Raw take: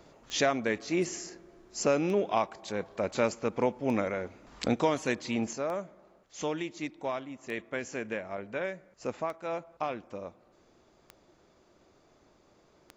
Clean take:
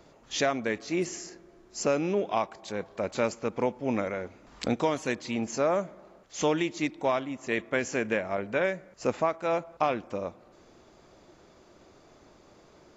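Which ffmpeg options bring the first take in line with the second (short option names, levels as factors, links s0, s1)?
-af "adeclick=t=4,asetnsamples=n=441:p=0,asendcmd='5.53 volume volume 7dB',volume=1"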